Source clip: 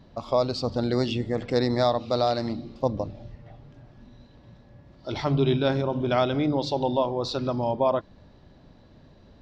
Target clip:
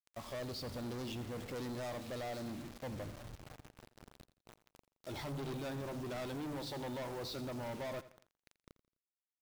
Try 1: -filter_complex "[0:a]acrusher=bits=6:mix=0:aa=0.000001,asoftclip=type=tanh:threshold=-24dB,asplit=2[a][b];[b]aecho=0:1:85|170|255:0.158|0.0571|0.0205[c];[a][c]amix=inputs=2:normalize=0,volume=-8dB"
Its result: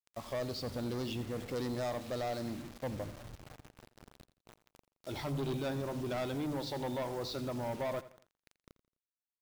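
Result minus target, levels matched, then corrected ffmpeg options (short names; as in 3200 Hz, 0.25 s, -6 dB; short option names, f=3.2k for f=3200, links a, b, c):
soft clip: distortion -5 dB
-filter_complex "[0:a]acrusher=bits=6:mix=0:aa=0.000001,asoftclip=type=tanh:threshold=-31.5dB,asplit=2[a][b];[b]aecho=0:1:85|170|255:0.158|0.0571|0.0205[c];[a][c]amix=inputs=2:normalize=0,volume=-8dB"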